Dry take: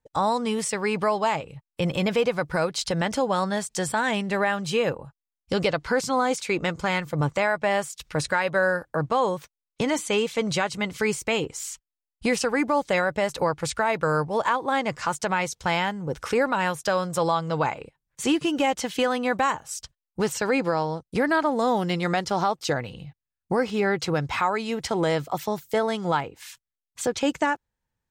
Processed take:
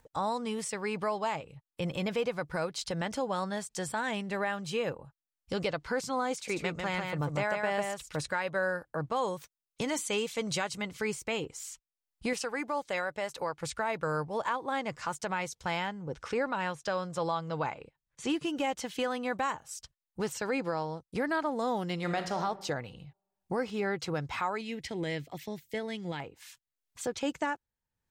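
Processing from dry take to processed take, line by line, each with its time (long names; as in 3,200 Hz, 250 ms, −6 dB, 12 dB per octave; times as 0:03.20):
0:06.33–0:08.26: single-tap delay 145 ms −4 dB
0:09.16–0:10.82: high-shelf EQ 4,300 Hz +7.5 dB
0:12.33–0:13.61: low-shelf EQ 290 Hz −10 dB
0:15.87–0:18.30: low-pass filter 6,800 Hz
0:21.94–0:22.38: thrown reverb, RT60 0.97 s, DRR 6 dB
0:24.61–0:26.20: drawn EQ curve 310 Hz 0 dB, 1,300 Hz −14 dB, 1,900 Hz +4 dB, 6,900 Hz −4 dB
whole clip: upward compression, threshold −42 dBFS; level −8.5 dB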